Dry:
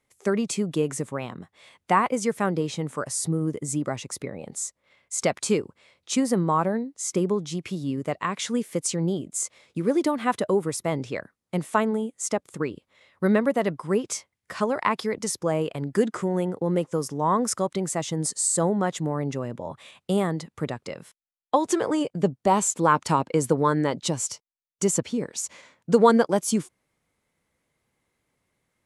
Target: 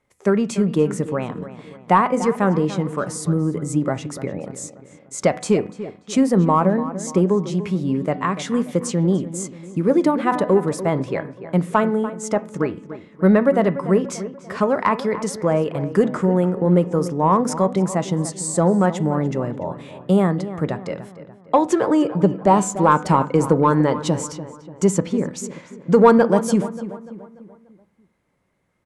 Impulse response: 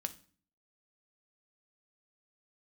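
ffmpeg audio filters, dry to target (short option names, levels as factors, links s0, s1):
-filter_complex "[0:a]highshelf=f=9900:g=-9,bandreject=f=249.2:t=h:w=4,bandreject=f=498.4:t=h:w=4,bandreject=f=747.6:t=h:w=4,bandreject=f=996.8:t=h:w=4,bandreject=f=1246:t=h:w=4,bandreject=f=1495.2:t=h:w=4,bandreject=f=1744.4:t=h:w=4,bandreject=f=1993.6:t=h:w=4,bandreject=f=2242.8:t=h:w=4,bandreject=f=2492:t=h:w=4,acontrast=81,asplit=2[s0][s1];[s1]adelay=292,lowpass=f=2500:p=1,volume=0.224,asplit=2[s2][s3];[s3]adelay=292,lowpass=f=2500:p=1,volume=0.47,asplit=2[s4][s5];[s5]adelay=292,lowpass=f=2500:p=1,volume=0.47,asplit=2[s6][s7];[s7]adelay=292,lowpass=f=2500:p=1,volume=0.47,asplit=2[s8][s9];[s9]adelay=292,lowpass=f=2500:p=1,volume=0.47[s10];[s0][s2][s4][s6][s8][s10]amix=inputs=6:normalize=0,asplit=2[s11][s12];[1:a]atrim=start_sample=2205,lowpass=2300[s13];[s12][s13]afir=irnorm=-1:irlink=0,volume=1.06[s14];[s11][s14]amix=inputs=2:normalize=0,volume=0.501"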